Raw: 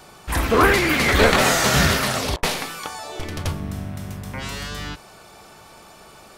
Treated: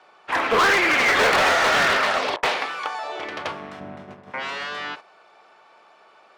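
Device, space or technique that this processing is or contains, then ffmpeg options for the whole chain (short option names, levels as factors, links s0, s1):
walkie-talkie: -filter_complex "[0:a]asplit=3[s0][s1][s2];[s0]afade=t=out:st=3.79:d=0.02[s3];[s1]tiltshelf=f=730:g=7.5,afade=t=in:st=3.79:d=0.02,afade=t=out:st=4.3:d=0.02[s4];[s2]afade=t=in:st=4.3:d=0.02[s5];[s3][s4][s5]amix=inputs=3:normalize=0,highpass=540,lowpass=2700,asoftclip=type=hard:threshold=0.0944,agate=range=0.316:threshold=0.00794:ratio=16:detection=peak,volume=1.88"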